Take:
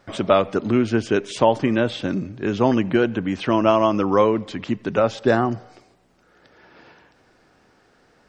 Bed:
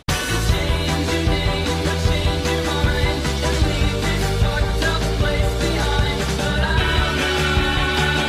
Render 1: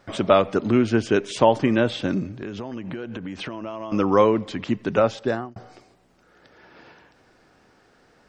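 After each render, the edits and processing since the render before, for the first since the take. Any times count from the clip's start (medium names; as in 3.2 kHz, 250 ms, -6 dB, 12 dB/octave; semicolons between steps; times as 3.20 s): 2.31–3.92 s: compression 12:1, threshold -28 dBFS; 5.01–5.56 s: fade out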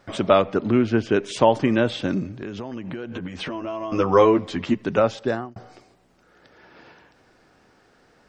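0.43–1.23 s: distance through air 110 m; 3.11–4.75 s: doubling 12 ms -2.5 dB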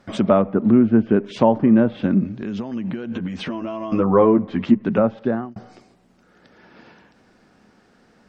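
low-pass that closes with the level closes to 1.3 kHz, closed at -18 dBFS; peaking EQ 210 Hz +11 dB 0.53 oct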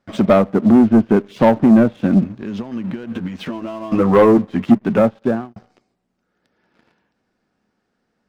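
waveshaping leveller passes 2; upward expansion 1.5:1, over -28 dBFS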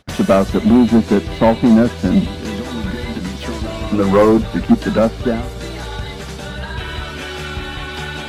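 add bed -7.5 dB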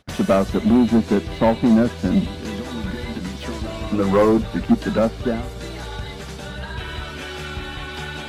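trim -4.5 dB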